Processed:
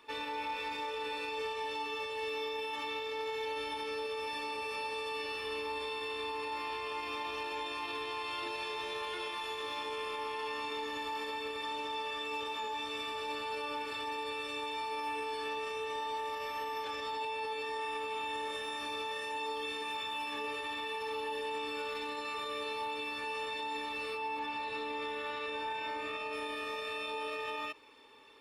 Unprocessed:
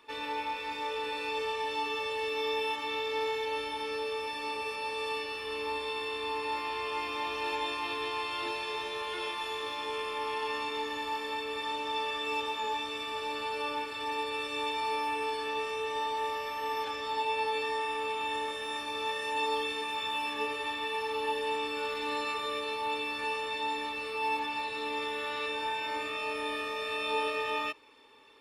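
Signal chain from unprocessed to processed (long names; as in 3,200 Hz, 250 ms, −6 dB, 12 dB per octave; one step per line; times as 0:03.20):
0:24.17–0:26.33: high-shelf EQ 4,000 Hz −7.5 dB
brickwall limiter −30 dBFS, peak gain reduction 10 dB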